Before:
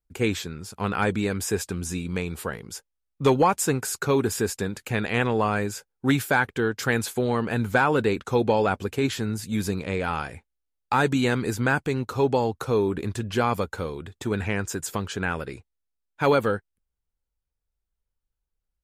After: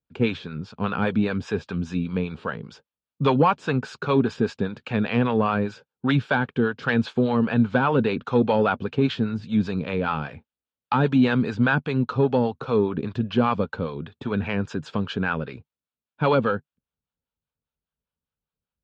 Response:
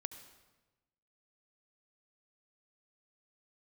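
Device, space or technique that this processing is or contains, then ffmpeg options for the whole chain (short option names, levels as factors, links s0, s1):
guitar amplifier with harmonic tremolo: -filter_complex "[0:a]acrossover=split=570[s0][s1];[s0]aeval=exprs='val(0)*(1-0.7/2+0.7/2*cos(2*PI*5*n/s))':c=same[s2];[s1]aeval=exprs='val(0)*(1-0.7/2-0.7/2*cos(2*PI*5*n/s))':c=same[s3];[s2][s3]amix=inputs=2:normalize=0,asoftclip=type=tanh:threshold=0.2,highpass=110,equalizer=f=150:t=q:w=4:g=5,equalizer=f=240:t=q:w=4:g=5,equalizer=f=340:t=q:w=4:g=-6,equalizer=f=760:t=q:w=4:g=-3,equalizer=f=2000:t=q:w=4:g=-9,lowpass=f=3700:w=0.5412,lowpass=f=3700:w=1.3066,volume=2"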